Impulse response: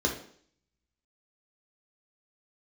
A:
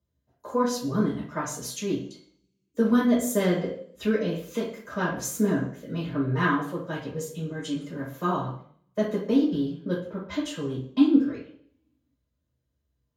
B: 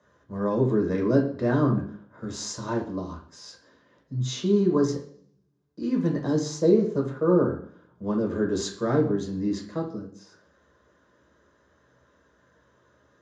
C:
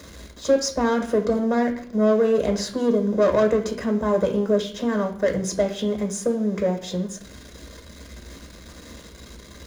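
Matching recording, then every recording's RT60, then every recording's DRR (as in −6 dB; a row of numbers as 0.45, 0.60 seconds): B; 0.55, 0.55, 0.55 seconds; −8.0, −0.5, 4.0 decibels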